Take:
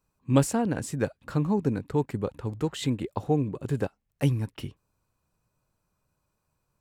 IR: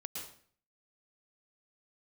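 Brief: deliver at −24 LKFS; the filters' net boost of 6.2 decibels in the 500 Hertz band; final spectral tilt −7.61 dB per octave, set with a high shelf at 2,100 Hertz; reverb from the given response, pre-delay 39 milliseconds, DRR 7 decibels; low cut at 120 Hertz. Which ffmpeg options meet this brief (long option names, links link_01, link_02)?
-filter_complex "[0:a]highpass=120,equalizer=frequency=500:width_type=o:gain=7.5,highshelf=frequency=2100:gain=-7,asplit=2[link_01][link_02];[1:a]atrim=start_sample=2205,adelay=39[link_03];[link_02][link_03]afir=irnorm=-1:irlink=0,volume=-5.5dB[link_04];[link_01][link_04]amix=inputs=2:normalize=0,volume=1.5dB"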